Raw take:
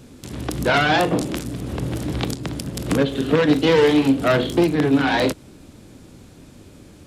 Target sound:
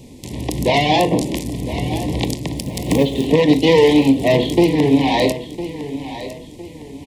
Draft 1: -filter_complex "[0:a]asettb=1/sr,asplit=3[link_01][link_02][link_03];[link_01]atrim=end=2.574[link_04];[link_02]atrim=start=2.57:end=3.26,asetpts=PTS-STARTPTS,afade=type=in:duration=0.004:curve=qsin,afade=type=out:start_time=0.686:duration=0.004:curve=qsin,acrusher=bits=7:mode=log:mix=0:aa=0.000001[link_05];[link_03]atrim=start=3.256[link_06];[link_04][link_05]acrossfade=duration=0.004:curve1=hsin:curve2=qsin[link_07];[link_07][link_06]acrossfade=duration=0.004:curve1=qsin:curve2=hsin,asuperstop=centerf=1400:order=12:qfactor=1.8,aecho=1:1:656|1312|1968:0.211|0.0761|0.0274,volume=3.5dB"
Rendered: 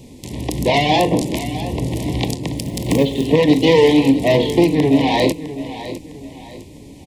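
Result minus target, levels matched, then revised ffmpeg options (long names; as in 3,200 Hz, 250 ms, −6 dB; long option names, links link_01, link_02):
echo 351 ms early
-filter_complex "[0:a]asettb=1/sr,asplit=3[link_01][link_02][link_03];[link_01]atrim=end=2.574[link_04];[link_02]atrim=start=2.57:end=3.26,asetpts=PTS-STARTPTS,afade=type=in:duration=0.004:curve=qsin,afade=type=out:start_time=0.686:duration=0.004:curve=qsin,acrusher=bits=7:mode=log:mix=0:aa=0.000001[link_05];[link_03]atrim=start=3.256[link_06];[link_04][link_05]acrossfade=duration=0.004:curve1=hsin:curve2=qsin[link_07];[link_07][link_06]acrossfade=duration=0.004:curve1=qsin:curve2=hsin,asuperstop=centerf=1400:order=12:qfactor=1.8,aecho=1:1:1007|2014|3021:0.211|0.0761|0.0274,volume=3.5dB"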